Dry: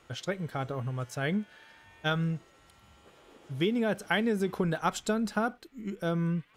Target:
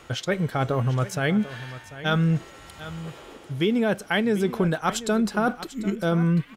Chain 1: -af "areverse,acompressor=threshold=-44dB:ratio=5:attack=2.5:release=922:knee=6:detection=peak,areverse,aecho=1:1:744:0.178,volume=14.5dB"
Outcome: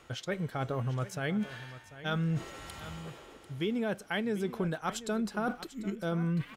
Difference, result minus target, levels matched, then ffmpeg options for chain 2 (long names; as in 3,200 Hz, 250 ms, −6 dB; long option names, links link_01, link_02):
downward compressor: peak gain reduction +9.5 dB
-af "areverse,acompressor=threshold=-32dB:ratio=5:attack=2.5:release=922:knee=6:detection=peak,areverse,aecho=1:1:744:0.178,volume=14.5dB"